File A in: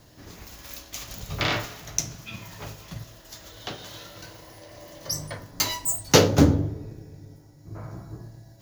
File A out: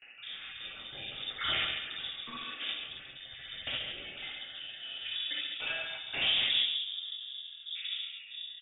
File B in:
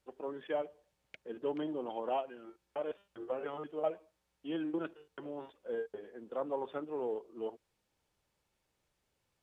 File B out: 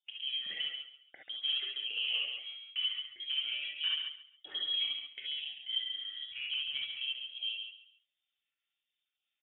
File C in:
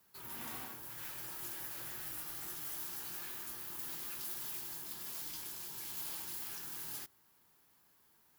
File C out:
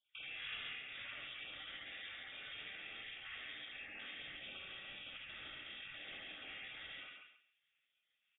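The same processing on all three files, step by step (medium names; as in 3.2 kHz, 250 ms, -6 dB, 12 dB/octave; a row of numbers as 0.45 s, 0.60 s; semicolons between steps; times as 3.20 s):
random holes in the spectrogram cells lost 35%; gate with hold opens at -50 dBFS; bass shelf 260 Hz -6.5 dB; band-stop 2.6 kHz, Q 5.6; in parallel at -1 dB: compression 6:1, threshold -50 dBFS; on the sum: overload inside the chain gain 28.5 dB; distance through air 340 m; on a send: feedback delay 137 ms, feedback 20%, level -6.5 dB; on the sum: gated-style reverb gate 90 ms rising, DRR -2.5 dB; frequency inversion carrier 3.6 kHz; tape noise reduction on one side only encoder only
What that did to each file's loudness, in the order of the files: -9.5 LU, +5.0 LU, -6.0 LU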